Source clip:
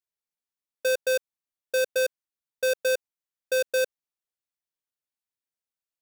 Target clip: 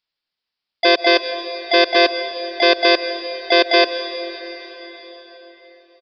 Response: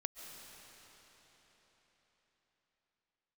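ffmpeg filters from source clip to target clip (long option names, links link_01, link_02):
-filter_complex "[0:a]asplit=4[link_01][link_02][link_03][link_04];[link_02]asetrate=29433,aresample=44100,atempo=1.49831,volume=-3dB[link_05];[link_03]asetrate=33038,aresample=44100,atempo=1.33484,volume=-8dB[link_06];[link_04]asetrate=58866,aresample=44100,atempo=0.749154,volume=0dB[link_07];[link_01][link_05][link_06][link_07]amix=inputs=4:normalize=0,aresample=11025,aresample=44100,asplit=2[link_08][link_09];[1:a]atrim=start_sample=2205[link_10];[link_09][link_10]afir=irnorm=-1:irlink=0,volume=1.5dB[link_11];[link_08][link_11]amix=inputs=2:normalize=0,crystalizer=i=4.5:c=0,volume=-1dB"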